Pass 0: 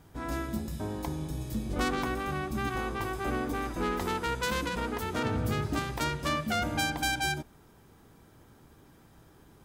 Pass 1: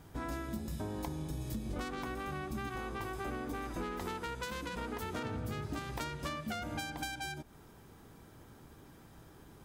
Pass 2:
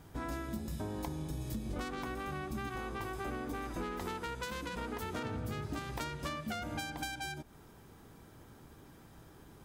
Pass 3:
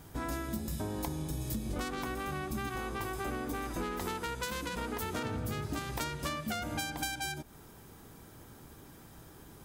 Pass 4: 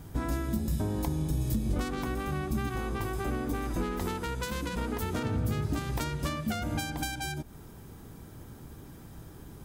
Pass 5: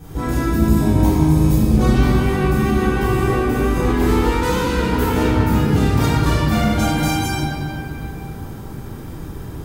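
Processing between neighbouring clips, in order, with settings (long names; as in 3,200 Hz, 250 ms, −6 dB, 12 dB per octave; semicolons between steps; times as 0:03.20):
downward compressor 10 to 1, threshold −36 dBFS, peak gain reduction 13.5 dB; level +1 dB
no processing that can be heard
high-shelf EQ 6,300 Hz +8 dB; level +2.5 dB
low-shelf EQ 320 Hz +9 dB
convolution reverb RT60 2.9 s, pre-delay 3 ms, DRR −12.5 dB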